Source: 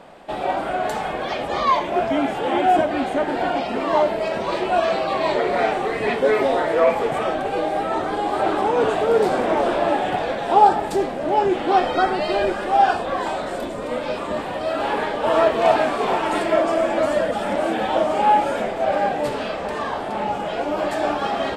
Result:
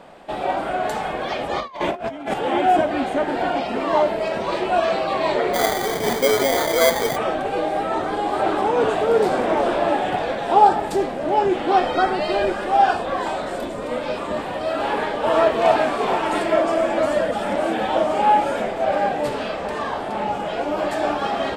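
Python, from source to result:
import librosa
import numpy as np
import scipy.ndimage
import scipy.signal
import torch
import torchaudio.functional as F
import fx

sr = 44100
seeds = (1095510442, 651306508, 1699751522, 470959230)

y = fx.over_compress(x, sr, threshold_db=-26.0, ratio=-0.5, at=(1.59, 2.34))
y = fx.sample_hold(y, sr, seeds[0], rate_hz=2700.0, jitter_pct=0, at=(5.53, 7.15), fade=0.02)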